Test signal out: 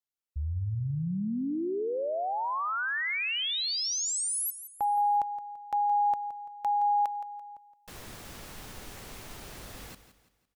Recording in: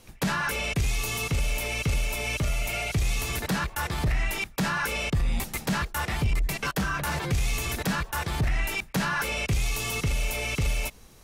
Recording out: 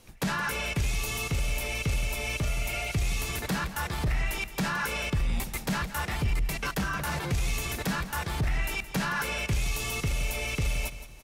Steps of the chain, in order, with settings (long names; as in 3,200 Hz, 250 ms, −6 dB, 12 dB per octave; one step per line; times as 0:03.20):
repeating echo 169 ms, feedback 38%, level −13 dB
level −2.5 dB